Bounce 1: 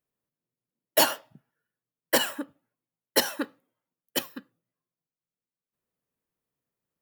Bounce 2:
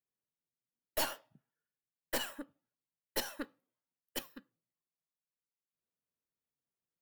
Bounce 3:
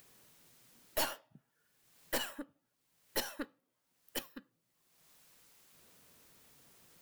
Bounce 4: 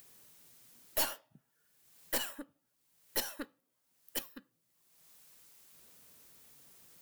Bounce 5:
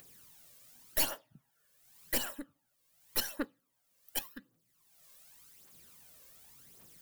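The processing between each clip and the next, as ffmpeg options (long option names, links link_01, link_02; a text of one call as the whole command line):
ffmpeg -i in.wav -af "aeval=exprs='(tanh(8.91*val(0)+0.65)-tanh(0.65))/8.91':channel_layout=same,volume=-8dB" out.wav
ffmpeg -i in.wav -af "acompressor=mode=upward:threshold=-39dB:ratio=2.5" out.wav
ffmpeg -i in.wav -af "highshelf=frequency=5600:gain=7,volume=-1.5dB" out.wav
ffmpeg -i in.wav -af "aphaser=in_gain=1:out_gain=1:delay=1.9:decay=0.57:speed=0.88:type=triangular" out.wav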